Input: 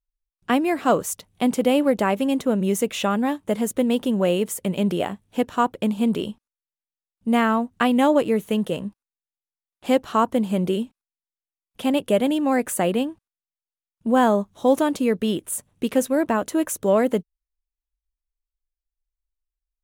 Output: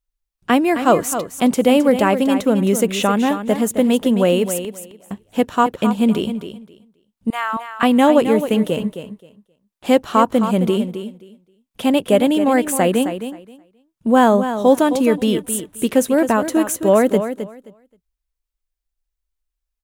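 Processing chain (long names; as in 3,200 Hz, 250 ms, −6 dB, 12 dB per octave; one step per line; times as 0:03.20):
0:04.58–0:05.11: gate with flip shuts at −25 dBFS, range −34 dB
0:07.30–0:07.83: four-pole ladder high-pass 760 Hz, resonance 30%
repeating echo 264 ms, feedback 18%, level −10 dB
level +5 dB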